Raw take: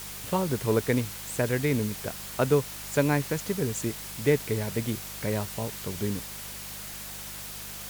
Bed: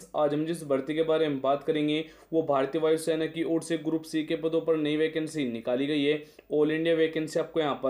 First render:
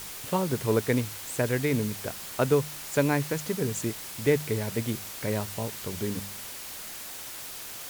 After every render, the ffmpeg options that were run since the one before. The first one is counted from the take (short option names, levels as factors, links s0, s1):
-af "bandreject=f=50:t=h:w=4,bandreject=f=100:t=h:w=4,bandreject=f=150:t=h:w=4,bandreject=f=200:t=h:w=4"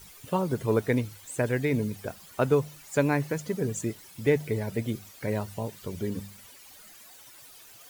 -af "afftdn=nr=14:nf=-40"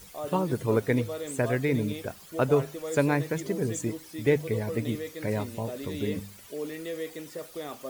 -filter_complex "[1:a]volume=0.299[s0];[0:a][s0]amix=inputs=2:normalize=0"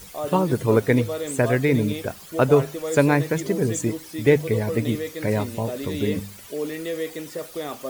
-af "volume=2.11"